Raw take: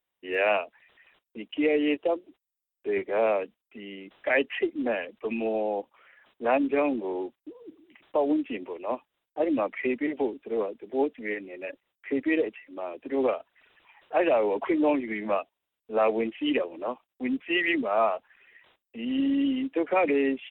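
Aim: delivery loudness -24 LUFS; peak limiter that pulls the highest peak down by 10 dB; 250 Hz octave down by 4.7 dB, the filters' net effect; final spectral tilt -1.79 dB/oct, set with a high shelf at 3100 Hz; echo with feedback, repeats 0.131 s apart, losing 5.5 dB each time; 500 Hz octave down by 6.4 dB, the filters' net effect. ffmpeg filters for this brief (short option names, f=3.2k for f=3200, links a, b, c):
-af "equalizer=f=250:t=o:g=-3,equalizer=f=500:t=o:g=-7.5,highshelf=f=3.1k:g=4,alimiter=limit=-21dB:level=0:latency=1,aecho=1:1:131|262|393|524|655|786|917:0.531|0.281|0.149|0.079|0.0419|0.0222|0.0118,volume=8.5dB"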